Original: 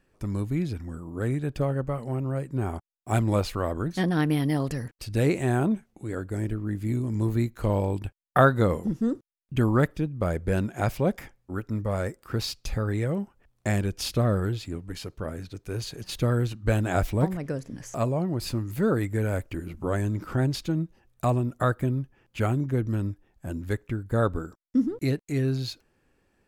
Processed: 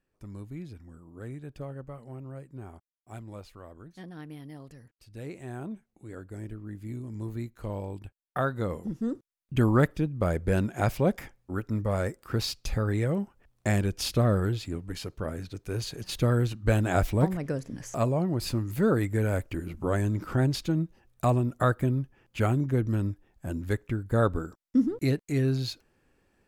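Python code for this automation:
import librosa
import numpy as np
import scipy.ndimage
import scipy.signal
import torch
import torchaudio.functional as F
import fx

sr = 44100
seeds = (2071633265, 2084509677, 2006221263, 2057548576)

y = fx.gain(x, sr, db=fx.line((2.39, -12.5), (3.21, -19.0), (5.0, -19.0), (6.07, -10.0), (8.43, -10.0), (9.61, 0.0)))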